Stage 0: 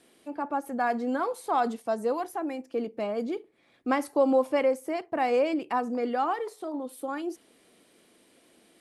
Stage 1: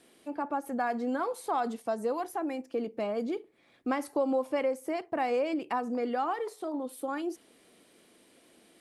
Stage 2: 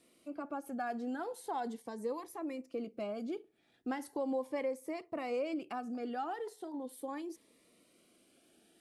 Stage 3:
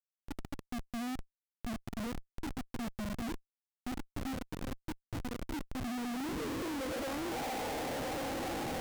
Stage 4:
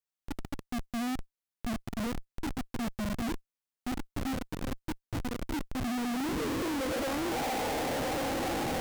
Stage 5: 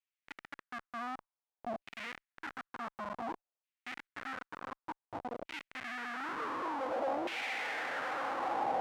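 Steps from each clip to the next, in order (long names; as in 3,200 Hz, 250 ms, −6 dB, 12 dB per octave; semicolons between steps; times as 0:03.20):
downward compressor 2 to 1, threshold −29 dBFS, peak gain reduction 6.5 dB
phaser whose notches keep moving one way rising 0.39 Hz; level −5.5 dB
feedback delay with all-pass diffusion 1,316 ms, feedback 50%, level −10 dB; low-pass filter sweep 110 Hz → 850 Hz, 0:05.74–0:07.33; comparator with hysteresis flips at −53.5 dBFS; level +9 dB
leveller curve on the samples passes 1; level +3 dB
auto-filter band-pass saw down 0.55 Hz 630–2,600 Hz; level +5 dB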